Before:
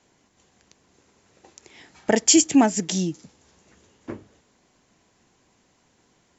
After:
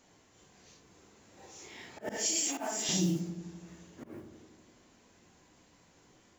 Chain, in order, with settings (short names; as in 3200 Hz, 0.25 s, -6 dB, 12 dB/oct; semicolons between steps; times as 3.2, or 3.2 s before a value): phase scrambler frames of 0.2 s; modulation noise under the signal 27 dB; auto swell 0.368 s; limiter -20.5 dBFS, peak gain reduction 12 dB; 2.16–2.89 HPF 590 Hz 12 dB/oct; on a send: darkening echo 85 ms, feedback 74%, low-pass 1000 Hz, level -8.5 dB